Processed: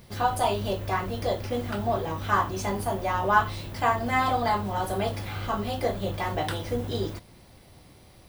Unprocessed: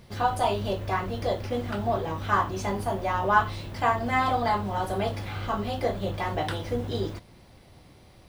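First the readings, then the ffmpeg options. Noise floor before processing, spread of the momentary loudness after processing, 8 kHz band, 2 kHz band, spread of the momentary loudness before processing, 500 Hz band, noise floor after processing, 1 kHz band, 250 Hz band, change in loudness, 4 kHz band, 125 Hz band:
−53 dBFS, 7 LU, +4.5 dB, +0.5 dB, 7 LU, 0.0 dB, −53 dBFS, 0.0 dB, 0.0 dB, 0.0 dB, +1.0 dB, 0.0 dB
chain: -af "highshelf=frequency=9100:gain=10.5"

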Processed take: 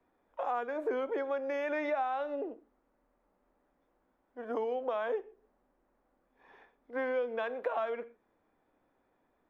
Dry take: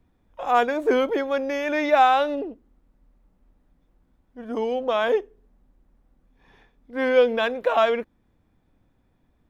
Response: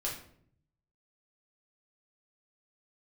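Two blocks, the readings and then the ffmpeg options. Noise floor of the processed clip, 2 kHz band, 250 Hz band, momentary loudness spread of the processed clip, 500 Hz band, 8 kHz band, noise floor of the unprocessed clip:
−76 dBFS, −13.0 dB, −13.5 dB, 10 LU, −11.5 dB, can't be measured, −67 dBFS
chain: -filter_complex "[0:a]acrossover=split=330 2100:gain=0.0794 1 0.224[link_01][link_02][link_03];[link_01][link_02][link_03]amix=inputs=3:normalize=0,asplit=2[link_04][link_05];[1:a]atrim=start_sample=2205,atrim=end_sample=6615[link_06];[link_05][link_06]afir=irnorm=-1:irlink=0,volume=-17.5dB[link_07];[link_04][link_07]amix=inputs=2:normalize=0,acrossover=split=190[link_08][link_09];[link_09]acompressor=threshold=-32dB:ratio=6[link_10];[link_08][link_10]amix=inputs=2:normalize=0"

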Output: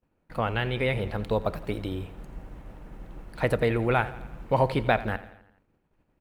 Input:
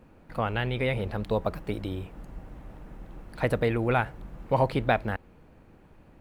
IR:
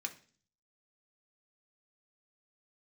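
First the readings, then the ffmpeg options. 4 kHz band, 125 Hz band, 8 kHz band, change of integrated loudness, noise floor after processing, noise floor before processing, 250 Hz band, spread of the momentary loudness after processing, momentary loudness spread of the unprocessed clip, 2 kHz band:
+2.0 dB, +0.5 dB, can't be measured, +1.0 dB, −72 dBFS, −55 dBFS, +0.5 dB, 21 LU, 21 LU, +1.5 dB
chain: -filter_complex "[0:a]agate=range=-33dB:threshold=-42dB:ratio=3:detection=peak,aecho=1:1:85|170|255|340|425:0.141|0.0805|0.0459|0.0262|0.0149,asplit=2[link_01][link_02];[1:a]atrim=start_sample=2205,asetrate=52920,aresample=44100[link_03];[link_02][link_03]afir=irnorm=-1:irlink=0,volume=-9.5dB[link_04];[link_01][link_04]amix=inputs=2:normalize=0"

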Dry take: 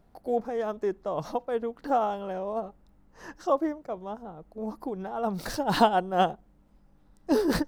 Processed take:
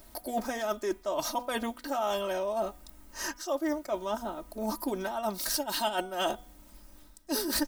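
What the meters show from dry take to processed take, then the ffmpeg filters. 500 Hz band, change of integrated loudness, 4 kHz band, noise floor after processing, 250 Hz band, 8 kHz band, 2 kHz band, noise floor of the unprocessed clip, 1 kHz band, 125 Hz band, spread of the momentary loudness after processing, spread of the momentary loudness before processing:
−3.5 dB, −3.5 dB, +4.0 dB, −55 dBFS, −4.5 dB, +10.5 dB, 0.0 dB, −61 dBFS, −5.5 dB, can't be measured, 7 LU, 16 LU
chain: -af "aecho=1:1:3.2:0.82,crystalizer=i=9:c=0,areverse,acompressor=threshold=-30dB:ratio=10,areverse,bandreject=frequency=244.6:width_type=h:width=4,bandreject=frequency=489.2:width_type=h:width=4,bandreject=frequency=733.8:width_type=h:width=4,bandreject=frequency=978.4:width_type=h:width=4,bandreject=frequency=1223:width_type=h:width=4,bandreject=frequency=1467.6:width_type=h:width=4,bandreject=frequency=1712.2:width_type=h:width=4,bandreject=frequency=1956.8:width_type=h:width=4,bandreject=frequency=2201.4:width_type=h:width=4,bandreject=frequency=2446:width_type=h:width=4,bandreject=frequency=2690.6:width_type=h:width=4,bandreject=frequency=2935.2:width_type=h:width=4,bandreject=frequency=3179.8:width_type=h:width=4,bandreject=frequency=3424.4:width_type=h:width=4,volume=2.5dB"

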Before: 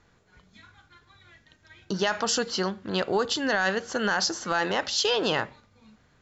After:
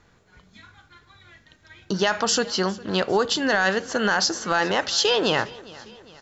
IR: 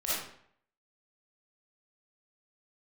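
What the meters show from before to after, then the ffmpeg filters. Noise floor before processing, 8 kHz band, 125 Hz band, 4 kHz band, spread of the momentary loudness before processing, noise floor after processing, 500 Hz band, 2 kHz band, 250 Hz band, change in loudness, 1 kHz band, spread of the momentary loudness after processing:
−63 dBFS, can't be measured, +4.0 dB, +4.0 dB, 6 LU, −58 dBFS, +4.0 dB, +4.0 dB, +4.0 dB, +4.0 dB, +4.0 dB, 6 LU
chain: -af "aecho=1:1:406|812|1218|1624:0.0841|0.0446|0.0236|0.0125,volume=4dB"

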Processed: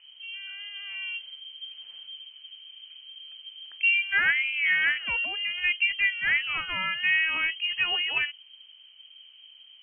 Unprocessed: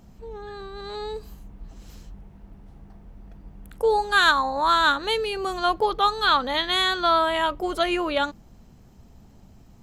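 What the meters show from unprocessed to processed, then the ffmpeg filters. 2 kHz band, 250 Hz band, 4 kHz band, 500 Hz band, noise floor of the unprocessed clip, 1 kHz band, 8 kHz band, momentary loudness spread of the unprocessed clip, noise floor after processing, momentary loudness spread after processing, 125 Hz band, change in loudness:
+2.5 dB, below −20 dB, −2.5 dB, below −25 dB, −51 dBFS, −19.0 dB, below −35 dB, 18 LU, −53 dBFS, 20 LU, below −10 dB, −2.5 dB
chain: -af "lowpass=frequency=2700:width_type=q:width=0.5098,lowpass=frequency=2700:width_type=q:width=0.6013,lowpass=frequency=2700:width_type=q:width=0.9,lowpass=frequency=2700:width_type=q:width=2.563,afreqshift=-3200,aemphasis=mode=production:type=75fm,volume=-6dB"

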